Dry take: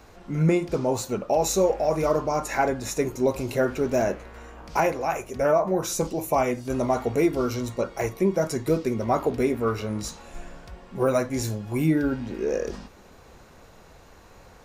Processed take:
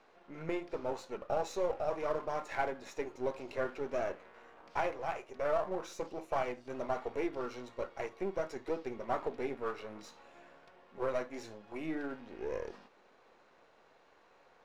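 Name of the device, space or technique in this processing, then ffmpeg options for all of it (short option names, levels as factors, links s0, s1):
crystal radio: -af "highpass=370,lowpass=3500,aeval=exprs='if(lt(val(0),0),0.447*val(0),val(0))':c=same,volume=0.398"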